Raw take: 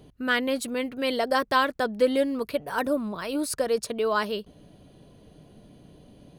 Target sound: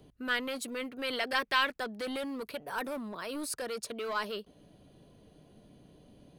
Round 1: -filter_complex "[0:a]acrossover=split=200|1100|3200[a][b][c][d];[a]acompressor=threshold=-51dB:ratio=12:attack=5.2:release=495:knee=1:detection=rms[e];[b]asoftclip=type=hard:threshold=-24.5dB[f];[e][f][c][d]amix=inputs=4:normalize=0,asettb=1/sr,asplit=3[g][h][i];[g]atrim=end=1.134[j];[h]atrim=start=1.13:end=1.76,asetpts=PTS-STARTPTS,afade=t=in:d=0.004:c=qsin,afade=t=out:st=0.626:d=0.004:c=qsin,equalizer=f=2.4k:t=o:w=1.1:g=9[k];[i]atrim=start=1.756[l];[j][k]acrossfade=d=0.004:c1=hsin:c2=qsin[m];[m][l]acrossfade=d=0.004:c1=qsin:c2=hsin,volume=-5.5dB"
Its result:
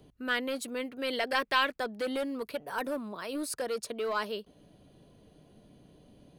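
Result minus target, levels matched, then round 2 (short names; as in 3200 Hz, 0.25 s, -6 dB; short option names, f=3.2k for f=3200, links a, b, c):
hard clip: distortion -4 dB
-filter_complex "[0:a]acrossover=split=200|1100|3200[a][b][c][d];[a]acompressor=threshold=-51dB:ratio=12:attack=5.2:release=495:knee=1:detection=rms[e];[b]asoftclip=type=hard:threshold=-30.5dB[f];[e][f][c][d]amix=inputs=4:normalize=0,asettb=1/sr,asplit=3[g][h][i];[g]atrim=end=1.134[j];[h]atrim=start=1.13:end=1.76,asetpts=PTS-STARTPTS,afade=t=in:d=0.004:c=qsin,afade=t=out:st=0.626:d=0.004:c=qsin,equalizer=f=2.4k:t=o:w=1.1:g=9[k];[i]atrim=start=1.756[l];[j][k]acrossfade=d=0.004:c1=hsin:c2=qsin[m];[m][l]acrossfade=d=0.004:c1=qsin:c2=hsin,volume=-5.5dB"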